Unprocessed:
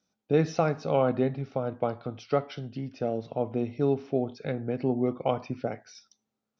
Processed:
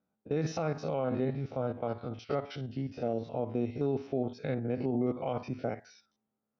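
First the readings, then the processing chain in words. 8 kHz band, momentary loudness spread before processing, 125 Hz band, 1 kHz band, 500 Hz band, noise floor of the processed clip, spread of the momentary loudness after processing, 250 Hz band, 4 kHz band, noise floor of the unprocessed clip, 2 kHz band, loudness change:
can't be measured, 9 LU, −3.5 dB, −6.5 dB, −5.5 dB, −85 dBFS, 6 LU, −3.5 dB, −4.5 dB, −85 dBFS, −5.0 dB, −4.5 dB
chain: spectrum averaged block by block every 50 ms
brickwall limiter −21.5 dBFS, peak gain reduction 9.5 dB
low-pass that shuts in the quiet parts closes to 1,400 Hz, open at −31.5 dBFS

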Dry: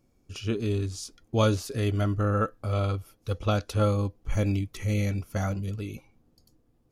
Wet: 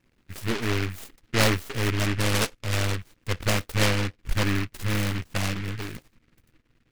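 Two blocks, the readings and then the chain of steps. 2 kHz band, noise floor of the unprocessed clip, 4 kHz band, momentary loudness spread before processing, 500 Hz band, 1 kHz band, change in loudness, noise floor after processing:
+11.0 dB, −67 dBFS, +10.0 dB, 10 LU, −1.5 dB, +1.5 dB, +1.5 dB, −68 dBFS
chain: gain on one half-wave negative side −12 dB
high-shelf EQ 6,400 Hz −11 dB
short delay modulated by noise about 1,800 Hz, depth 0.3 ms
level +4.5 dB

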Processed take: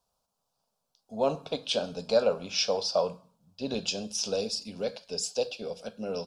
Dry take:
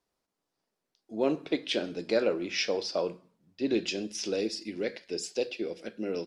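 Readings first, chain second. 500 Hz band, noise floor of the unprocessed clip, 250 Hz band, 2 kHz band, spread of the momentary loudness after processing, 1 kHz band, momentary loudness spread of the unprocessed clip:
+1.5 dB, −85 dBFS, −5.0 dB, −4.5 dB, 11 LU, +6.0 dB, 8 LU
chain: phaser with its sweep stopped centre 810 Hz, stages 4
level +6.5 dB

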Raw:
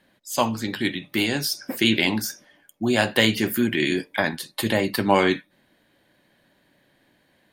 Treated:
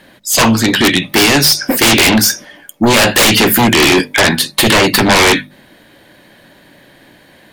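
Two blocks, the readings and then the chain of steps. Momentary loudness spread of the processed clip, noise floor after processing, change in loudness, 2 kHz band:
4 LU, −45 dBFS, +13.5 dB, +13.5 dB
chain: dynamic equaliser 3,100 Hz, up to +4 dB, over −36 dBFS, Q 0.82
sine wavefolder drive 18 dB, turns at −2 dBFS
mains-hum notches 50/100/150/200/250 Hz
level −3 dB

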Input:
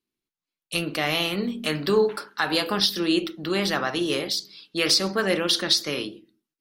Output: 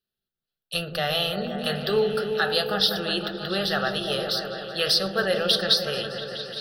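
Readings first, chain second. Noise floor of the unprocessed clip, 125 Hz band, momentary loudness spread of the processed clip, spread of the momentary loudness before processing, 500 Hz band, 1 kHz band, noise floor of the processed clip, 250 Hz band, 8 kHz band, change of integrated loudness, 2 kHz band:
below −85 dBFS, +0.5 dB, 8 LU, 8 LU, +0.5 dB, 0.0 dB, below −85 dBFS, −5.0 dB, −7.0 dB, −0.5 dB, −0.5 dB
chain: phaser with its sweep stopped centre 1,500 Hz, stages 8
echo whose low-pass opens from repeat to repeat 172 ms, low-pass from 400 Hz, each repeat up 1 octave, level −3 dB
level +2 dB

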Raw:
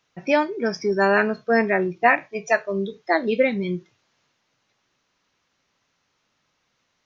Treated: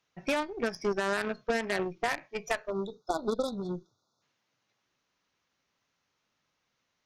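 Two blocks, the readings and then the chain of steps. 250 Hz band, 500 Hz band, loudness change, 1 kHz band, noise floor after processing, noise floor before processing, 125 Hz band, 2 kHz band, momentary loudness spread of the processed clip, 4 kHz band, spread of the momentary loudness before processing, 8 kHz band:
−10.5 dB, −10.5 dB, −11.0 dB, −11.5 dB, −80 dBFS, −72 dBFS, −10.0 dB, −12.0 dB, 6 LU, −3.5 dB, 9 LU, can't be measured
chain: brickwall limiter −13 dBFS, peak gain reduction 9 dB
harmonic generator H 3 −14 dB, 6 −18 dB, 8 −25 dB, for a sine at −13 dBFS
downward compressor 2 to 1, threshold −29 dBFS, peak gain reduction 6.5 dB
time-frequency box erased 0:02.70–0:04.22, 1,500–3,400 Hz

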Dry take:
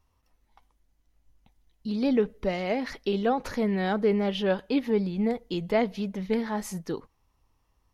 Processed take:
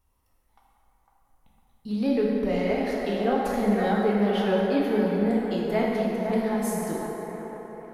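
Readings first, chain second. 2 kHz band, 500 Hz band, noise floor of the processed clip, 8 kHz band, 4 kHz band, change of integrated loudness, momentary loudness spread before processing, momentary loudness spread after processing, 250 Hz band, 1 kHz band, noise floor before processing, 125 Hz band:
+2.0 dB, +2.5 dB, −69 dBFS, can't be measured, −1.0 dB, +2.5 dB, 9 LU, 10 LU, +3.0 dB, +3.5 dB, −72 dBFS, +2.5 dB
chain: high shelf with overshoot 7,400 Hz +7 dB, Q 1.5
on a send: delay with a band-pass on its return 504 ms, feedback 49%, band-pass 890 Hz, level −4.5 dB
on the sum: dense smooth reverb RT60 3.1 s, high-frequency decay 0.55×, DRR −3.5 dB
level −3.5 dB

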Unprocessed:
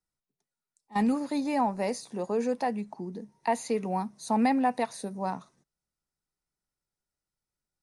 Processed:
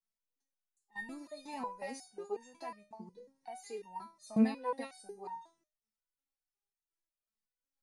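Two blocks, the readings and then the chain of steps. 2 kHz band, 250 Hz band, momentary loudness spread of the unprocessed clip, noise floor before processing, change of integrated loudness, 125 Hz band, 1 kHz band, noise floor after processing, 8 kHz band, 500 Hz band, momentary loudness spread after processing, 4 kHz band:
−8.5 dB, −8.5 dB, 10 LU, below −85 dBFS, −10.0 dB, −10.0 dB, −14.0 dB, below −85 dBFS, −12.0 dB, −11.5 dB, 19 LU, −10.0 dB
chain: step-sequenced resonator 5.5 Hz 220–920 Hz
level +5 dB

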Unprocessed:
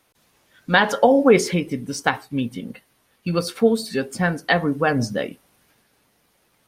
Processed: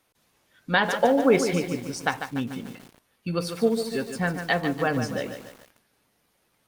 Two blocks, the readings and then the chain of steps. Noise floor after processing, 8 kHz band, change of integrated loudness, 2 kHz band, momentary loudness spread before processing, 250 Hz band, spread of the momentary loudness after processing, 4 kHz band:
−70 dBFS, −4.5 dB, −5.0 dB, −4.5 dB, 13 LU, −4.5 dB, 14 LU, −4.5 dB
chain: feedback echo at a low word length 146 ms, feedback 55%, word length 6 bits, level −8 dB
level −5.5 dB

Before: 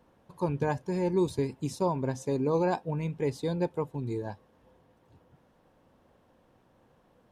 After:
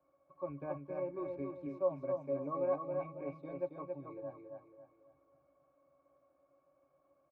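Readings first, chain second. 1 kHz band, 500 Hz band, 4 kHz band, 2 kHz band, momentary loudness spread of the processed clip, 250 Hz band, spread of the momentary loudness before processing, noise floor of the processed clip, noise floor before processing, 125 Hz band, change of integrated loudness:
−10.0 dB, −6.5 dB, below −30 dB, −15.5 dB, 12 LU, −13.0 dB, 7 LU, −75 dBFS, −65 dBFS, −18.0 dB, −9.0 dB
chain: three-way crossover with the lows and the highs turned down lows −23 dB, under 430 Hz, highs −16 dB, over 2,500 Hz
resonances in every octave C#, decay 0.1 s
repeating echo 274 ms, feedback 37%, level −4.5 dB
level +5 dB

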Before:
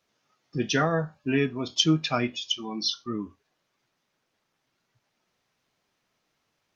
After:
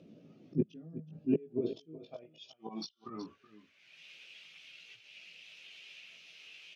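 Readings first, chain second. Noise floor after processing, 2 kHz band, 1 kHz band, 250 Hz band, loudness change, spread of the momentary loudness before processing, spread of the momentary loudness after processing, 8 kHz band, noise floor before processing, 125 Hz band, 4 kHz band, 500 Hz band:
−69 dBFS, −18.0 dB, −20.0 dB, −8.5 dB, −13.5 dB, 12 LU, 19 LU, can't be measured, −78 dBFS, −13.0 dB, −20.5 dB, −8.5 dB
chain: flat-topped bell 1,300 Hz −10 dB
gate with flip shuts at −17 dBFS, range −38 dB
volume swells 201 ms
on a send: single-tap delay 373 ms −15 dB
on the sum: multi-voice chorus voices 4, 0.63 Hz, delay 18 ms, depth 1.3 ms
graphic EQ with 15 bands 160 Hz +8 dB, 1,000 Hz −4 dB, 2,500 Hz +6 dB
in parallel at −3.5 dB: soft clipping −34.5 dBFS, distortion −16 dB
on the sum: upward compression, threshold −49 dBFS
band-pass filter sweep 270 Hz → 2,600 Hz, 0:01.14–0:04.12
level +14.5 dB

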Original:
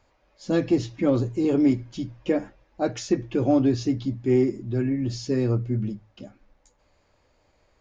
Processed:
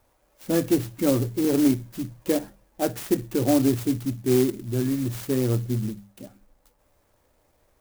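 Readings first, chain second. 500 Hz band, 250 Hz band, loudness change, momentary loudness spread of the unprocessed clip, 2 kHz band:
0.0 dB, 0.0 dB, 0.0 dB, 8 LU, +0.5 dB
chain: mains-hum notches 50/100/150/200 Hz
converter with an unsteady clock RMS 0.083 ms

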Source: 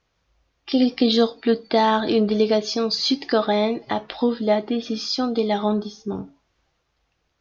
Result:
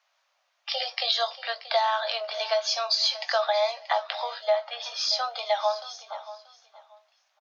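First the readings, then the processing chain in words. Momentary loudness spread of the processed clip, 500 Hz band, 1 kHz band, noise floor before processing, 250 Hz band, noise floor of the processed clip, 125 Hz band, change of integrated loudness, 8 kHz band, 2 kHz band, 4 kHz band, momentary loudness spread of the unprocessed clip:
11 LU, −7.0 dB, −2.5 dB, −72 dBFS, below −40 dB, −73 dBFS, below −40 dB, −5.0 dB, can't be measured, −0.5 dB, 0.0 dB, 8 LU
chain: Butterworth high-pass 570 Hz 96 dB per octave
downward compressor, threshold −23 dBFS, peak gain reduction 8.5 dB
double-tracking delay 19 ms −11.5 dB
repeating echo 632 ms, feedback 22%, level −16 dB
level +2 dB

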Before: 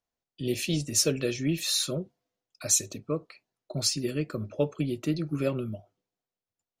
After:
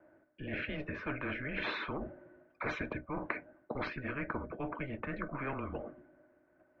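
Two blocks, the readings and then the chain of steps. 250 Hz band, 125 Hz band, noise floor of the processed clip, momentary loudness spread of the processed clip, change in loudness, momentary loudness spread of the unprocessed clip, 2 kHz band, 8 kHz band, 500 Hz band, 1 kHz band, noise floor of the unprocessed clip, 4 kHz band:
−9.5 dB, −11.5 dB, −70 dBFS, 8 LU, −11.0 dB, 11 LU, +3.5 dB, below −40 dB, −10.0 dB, +6.0 dB, below −85 dBFS, −18.0 dB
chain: single-sideband voice off tune −140 Hz 210–2,100 Hz
reversed playback
downward compressor 5 to 1, threshold −43 dBFS, peak gain reduction 20 dB
reversed playback
hollow resonant body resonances 310/610/1,500 Hz, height 17 dB, ringing for 65 ms
every bin compressed towards the loudest bin 4 to 1
level +4 dB

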